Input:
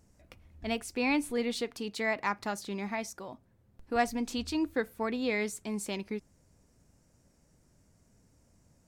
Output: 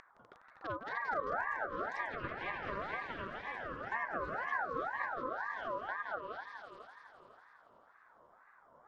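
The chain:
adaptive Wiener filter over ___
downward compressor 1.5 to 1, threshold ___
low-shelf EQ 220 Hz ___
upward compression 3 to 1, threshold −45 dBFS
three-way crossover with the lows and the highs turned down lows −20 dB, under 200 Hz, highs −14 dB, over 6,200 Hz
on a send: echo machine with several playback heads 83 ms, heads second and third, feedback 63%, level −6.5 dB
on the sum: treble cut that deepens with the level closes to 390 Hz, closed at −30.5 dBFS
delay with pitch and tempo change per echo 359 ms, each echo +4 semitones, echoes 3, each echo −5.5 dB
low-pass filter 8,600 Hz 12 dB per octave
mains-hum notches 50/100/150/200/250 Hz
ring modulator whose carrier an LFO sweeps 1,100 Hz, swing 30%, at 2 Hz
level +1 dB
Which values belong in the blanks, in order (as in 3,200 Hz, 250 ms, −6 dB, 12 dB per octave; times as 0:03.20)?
25 samples, −44 dBFS, +10.5 dB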